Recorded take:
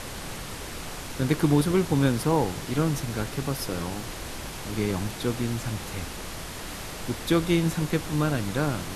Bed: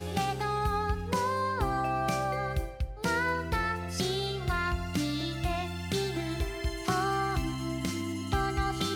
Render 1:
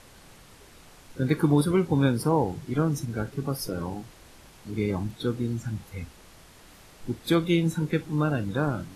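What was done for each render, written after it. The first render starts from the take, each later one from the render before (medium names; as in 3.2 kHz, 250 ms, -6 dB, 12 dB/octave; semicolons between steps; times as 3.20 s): noise print and reduce 15 dB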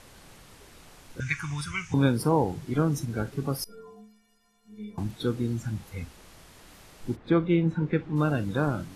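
1.20–1.94 s: FFT filter 110 Hz 0 dB, 200 Hz -18 dB, 330 Hz -27 dB, 510 Hz -30 dB, 1.2 kHz -2 dB, 2.5 kHz +11 dB, 4.1 kHz -7 dB, 6.2 kHz +14 dB, 12 kHz -15 dB; 3.64–4.98 s: inharmonic resonator 210 Hz, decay 0.63 s, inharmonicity 0.03; 7.15–8.15 s: low-pass 1.6 kHz -> 2.6 kHz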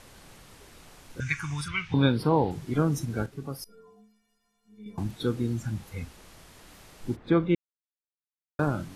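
1.68–2.51 s: resonant high shelf 5.2 kHz -10 dB, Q 3; 3.26–4.86 s: gain -7 dB; 7.55–8.59 s: mute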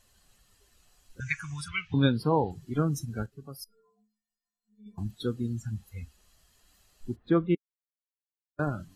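expander on every frequency bin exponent 1.5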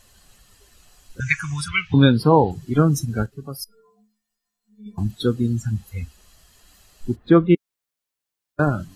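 trim +10.5 dB; peak limiter -2 dBFS, peak gain reduction 2.5 dB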